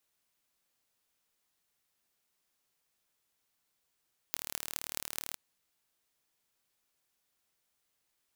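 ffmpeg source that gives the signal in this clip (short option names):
-f lavfi -i "aevalsrc='0.531*eq(mod(n,1164),0)*(0.5+0.5*eq(mod(n,9312),0))':d=1.02:s=44100"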